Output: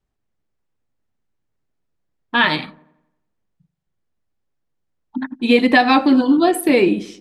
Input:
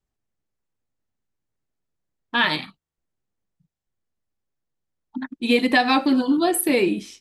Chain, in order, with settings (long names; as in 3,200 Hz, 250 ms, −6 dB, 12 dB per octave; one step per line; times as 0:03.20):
low-pass filter 3,300 Hz 6 dB per octave
delay with a low-pass on its return 88 ms, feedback 49%, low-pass 940 Hz, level −18.5 dB
level +5.5 dB